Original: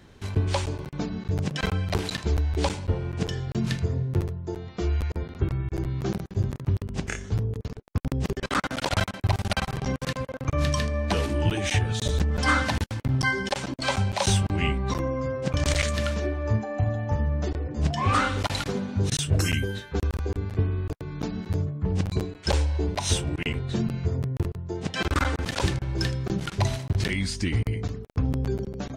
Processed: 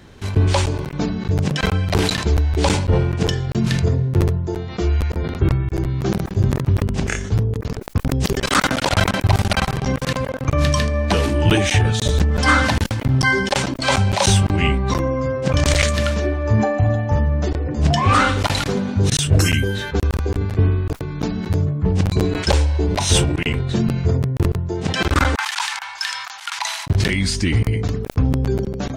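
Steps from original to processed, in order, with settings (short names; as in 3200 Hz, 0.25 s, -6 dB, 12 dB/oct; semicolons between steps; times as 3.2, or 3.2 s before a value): 8.11–8.69 high shelf 3500 Hz +9.5 dB; 25.35–26.87 elliptic high-pass 870 Hz, stop band 50 dB; sustainer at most 40 dB/s; gain +7 dB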